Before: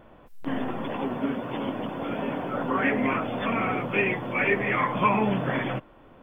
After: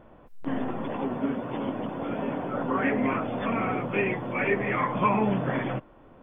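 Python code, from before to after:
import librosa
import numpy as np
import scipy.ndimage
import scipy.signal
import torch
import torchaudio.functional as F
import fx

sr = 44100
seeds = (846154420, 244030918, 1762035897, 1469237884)

y = fx.high_shelf(x, sr, hz=2300.0, db=-9.0)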